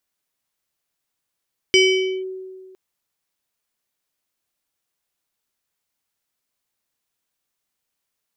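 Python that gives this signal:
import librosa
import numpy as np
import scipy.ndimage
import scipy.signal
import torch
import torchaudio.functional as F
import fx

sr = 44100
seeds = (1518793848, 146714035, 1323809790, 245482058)

y = fx.fm2(sr, length_s=1.01, level_db=-9, carrier_hz=376.0, ratio=7.08, index=1.3, index_s=0.5, decay_s=1.79, shape='linear')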